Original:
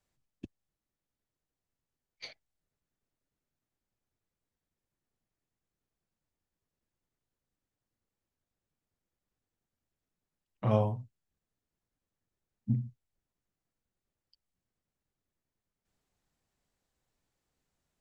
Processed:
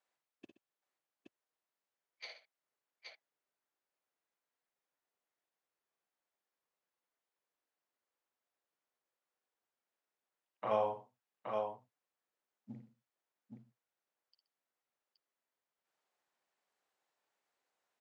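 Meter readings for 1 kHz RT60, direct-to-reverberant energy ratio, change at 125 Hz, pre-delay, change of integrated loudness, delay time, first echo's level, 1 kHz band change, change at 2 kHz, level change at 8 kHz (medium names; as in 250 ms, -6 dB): no reverb, no reverb, -24.5 dB, no reverb, -7.0 dB, 55 ms, -6.5 dB, +2.0 dB, +0.5 dB, no reading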